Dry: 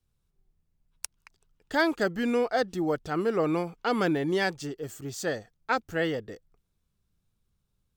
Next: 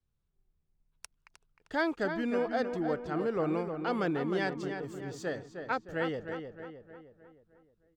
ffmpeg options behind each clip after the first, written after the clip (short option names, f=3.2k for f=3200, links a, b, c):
-filter_complex "[0:a]aemphasis=mode=reproduction:type=50kf,asplit=2[a][b];[b]adelay=309,lowpass=f=3k:p=1,volume=-7dB,asplit=2[c][d];[d]adelay=309,lowpass=f=3k:p=1,volume=0.5,asplit=2[e][f];[f]adelay=309,lowpass=f=3k:p=1,volume=0.5,asplit=2[g][h];[h]adelay=309,lowpass=f=3k:p=1,volume=0.5,asplit=2[i][j];[j]adelay=309,lowpass=f=3k:p=1,volume=0.5,asplit=2[k][l];[l]adelay=309,lowpass=f=3k:p=1,volume=0.5[m];[a][c][e][g][i][k][m]amix=inputs=7:normalize=0,volume=-5dB"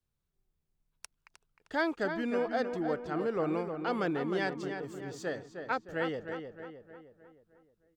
-af "lowshelf=f=140:g=-5.5"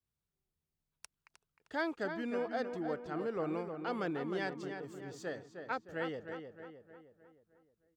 -af "highpass=45,volume=-5dB"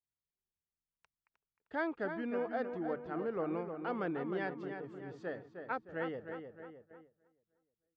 -af "lowpass=2.3k,agate=range=-12dB:threshold=-58dB:ratio=16:detection=peak,bandreject=f=50:t=h:w=6,bandreject=f=100:t=h:w=6,bandreject=f=150:t=h:w=6"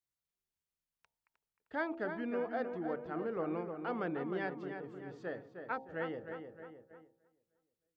-af "bandreject=f=66.2:t=h:w=4,bandreject=f=132.4:t=h:w=4,bandreject=f=198.6:t=h:w=4,bandreject=f=264.8:t=h:w=4,bandreject=f=331:t=h:w=4,bandreject=f=397.2:t=h:w=4,bandreject=f=463.4:t=h:w=4,bandreject=f=529.6:t=h:w=4,bandreject=f=595.8:t=h:w=4,bandreject=f=662:t=h:w=4,bandreject=f=728.2:t=h:w=4,bandreject=f=794.4:t=h:w=4,bandreject=f=860.6:t=h:w=4,bandreject=f=926.8:t=h:w=4"